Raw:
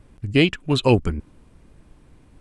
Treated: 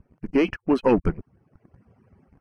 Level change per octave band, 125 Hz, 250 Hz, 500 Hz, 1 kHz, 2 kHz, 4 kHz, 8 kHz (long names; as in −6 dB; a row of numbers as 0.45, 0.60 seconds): −10.5 dB, −1.0 dB, −1.0 dB, −0.5 dB, −7.5 dB, −16.0 dB, below −10 dB